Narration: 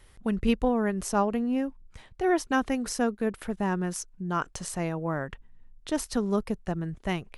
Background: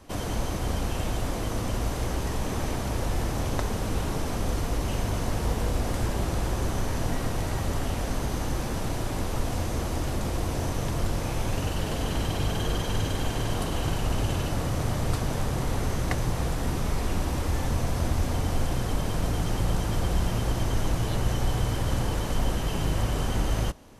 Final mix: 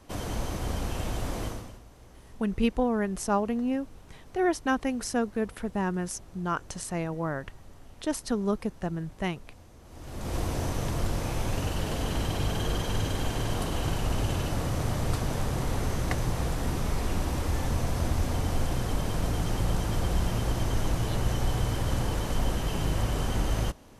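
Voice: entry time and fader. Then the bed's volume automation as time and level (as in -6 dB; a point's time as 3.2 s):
2.15 s, -1.0 dB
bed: 1.46 s -3 dB
1.84 s -23.5 dB
9.81 s -23.5 dB
10.35 s -1.5 dB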